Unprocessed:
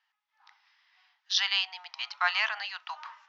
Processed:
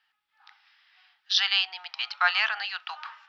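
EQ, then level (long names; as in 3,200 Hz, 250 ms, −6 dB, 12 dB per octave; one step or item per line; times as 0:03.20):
high-shelf EQ 5,900 Hz −8 dB
dynamic equaliser 2,700 Hz, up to −3 dB, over −37 dBFS, Q 0.86
thirty-one-band graphic EQ 630 Hz −9 dB, 1,000 Hz −12 dB, 2,000 Hz −5 dB, 6,300 Hz −9 dB
+9.0 dB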